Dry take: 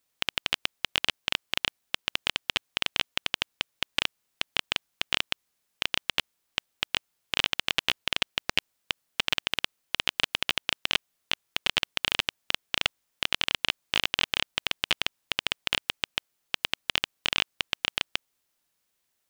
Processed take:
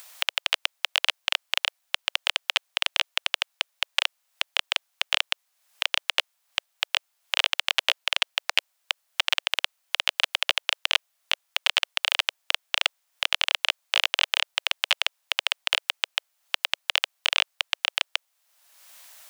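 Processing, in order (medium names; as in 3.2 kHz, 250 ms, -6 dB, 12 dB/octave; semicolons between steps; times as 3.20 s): upward compressor, threshold -32 dBFS; steep high-pass 570 Hz 48 dB/octave; trim +3.5 dB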